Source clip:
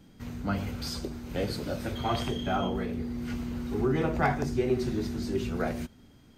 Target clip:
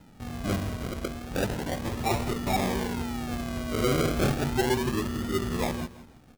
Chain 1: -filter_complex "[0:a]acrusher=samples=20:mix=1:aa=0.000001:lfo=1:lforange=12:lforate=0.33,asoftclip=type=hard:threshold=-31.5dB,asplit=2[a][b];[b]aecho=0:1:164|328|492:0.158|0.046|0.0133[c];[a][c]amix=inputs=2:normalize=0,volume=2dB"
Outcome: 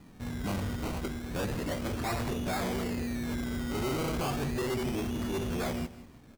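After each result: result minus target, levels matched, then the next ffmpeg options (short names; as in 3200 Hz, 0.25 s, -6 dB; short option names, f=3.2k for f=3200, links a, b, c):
hard clip: distortion +16 dB; decimation with a swept rate: distortion -6 dB
-filter_complex "[0:a]acrusher=samples=20:mix=1:aa=0.000001:lfo=1:lforange=12:lforate=0.33,asoftclip=type=hard:threshold=-20.5dB,asplit=2[a][b];[b]aecho=0:1:164|328|492:0.158|0.046|0.0133[c];[a][c]amix=inputs=2:normalize=0,volume=2dB"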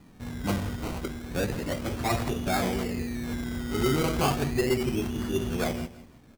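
decimation with a swept rate: distortion -6 dB
-filter_complex "[0:a]acrusher=samples=39:mix=1:aa=0.000001:lfo=1:lforange=23.4:lforate=0.33,asoftclip=type=hard:threshold=-20.5dB,asplit=2[a][b];[b]aecho=0:1:164|328|492:0.158|0.046|0.0133[c];[a][c]amix=inputs=2:normalize=0,volume=2dB"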